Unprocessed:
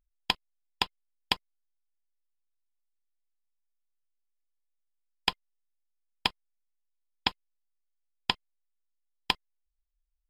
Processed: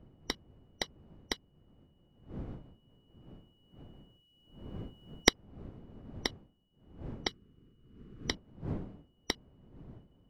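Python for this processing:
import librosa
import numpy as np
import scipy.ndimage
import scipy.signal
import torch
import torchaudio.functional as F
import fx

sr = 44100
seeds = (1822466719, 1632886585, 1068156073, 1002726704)

y = fx.band_shuffle(x, sr, order='3412')
y = fx.recorder_agc(y, sr, target_db=-10.0, rise_db_per_s=5.3, max_gain_db=30)
y = fx.dmg_wind(y, sr, seeds[0], corner_hz=230.0, level_db=-40.0)
y = fx.band_shelf(y, sr, hz=730.0, db=-13.0, octaves=1.0, at=(7.27, 8.3))
y = F.gain(torch.from_numpy(y), -8.5).numpy()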